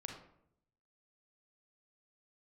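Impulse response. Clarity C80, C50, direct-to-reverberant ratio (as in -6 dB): 8.0 dB, 4.5 dB, 2.0 dB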